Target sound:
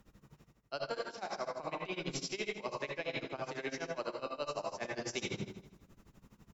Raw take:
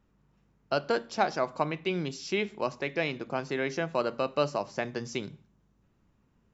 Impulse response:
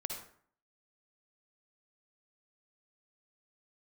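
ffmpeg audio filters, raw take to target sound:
-filter_complex "[0:a]acrossover=split=340[link_01][link_02];[link_01]asoftclip=type=tanh:threshold=-39.5dB[link_03];[link_03][link_02]amix=inputs=2:normalize=0[link_04];[1:a]atrim=start_sample=2205,asetrate=39690,aresample=44100[link_05];[link_04][link_05]afir=irnorm=-1:irlink=0,areverse,acompressor=threshold=-44dB:ratio=10,areverse,aemphasis=mode=production:type=cd,tremolo=f=12:d=0.9,aecho=1:1:158|316|474:0.237|0.0569|0.0137,volume=10.5dB"

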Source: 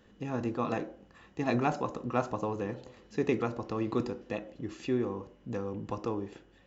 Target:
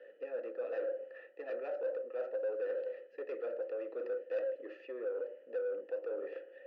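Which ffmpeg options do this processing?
ffmpeg -i in.wav -filter_complex "[0:a]areverse,acompressor=threshold=-39dB:ratio=6,areverse,asplit=3[link_01][link_02][link_03];[link_01]bandpass=frequency=530:width_type=q:width=8,volume=0dB[link_04];[link_02]bandpass=frequency=1840:width_type=q:width=8,volume=-6dB[link_05];[link_03]bandpass=frequency=2480:width_type=q:width=8,volume=-9dB[link_06];[link_04][link_05][link_06]amix=inputs=3:normalize=0,asplit=2[link_07][link_08];[link_08]highpass=frequency=720:poles=1,volume=18dB,asoftclip=type=tanh:threshold=-39dB[link_09];[link_07][link_09]amix=inputs=2:normalize=0,lowpass=frequency=1100:poles=1,volume=-6dB,highpass=frequency=300:width=0.5412,highpass=frequency=300:width=1.3066,equalizer=frequency=540:width_type=q:width=4:gain=5,equalizer=frequency=890:width_type=q:width=4:gain=-4,equalizer=frequency=1300:width_type=q:width=4:gain=7,equalizer=frequency=2200:width_type=q:width=4:gain=-4,equalizer=frequency=3600:width_type=q:width=4:gain=-6,lowpass=frequency=5400:width=0.5412,lowpass=frequency=5400:width=1.3066,volume=7.5dB" out.wav

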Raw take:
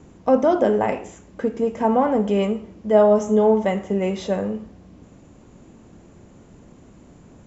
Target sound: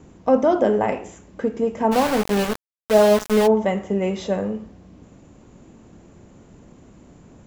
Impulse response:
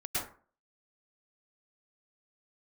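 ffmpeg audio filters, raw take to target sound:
-filter_complex "[0:a]asplit=3[link_01][link_02][link_03];[link_01]afade=type=out:start_time=1.91:duration=0.02[link_04];[link_02]aeval=exprs='val(0)*gte(abs(val(0)),0.1)':channel_layout=same,afade=type=in:start_time=1.91:duration=0.02,afade=type=out:start_time=3.46:duration=0.02[link_05];[link_03]afade=type=in:start_time=3.46:duration=0.02[link_06];[link_04][link_05][link_06]amix=inputs=3:normalize=0"

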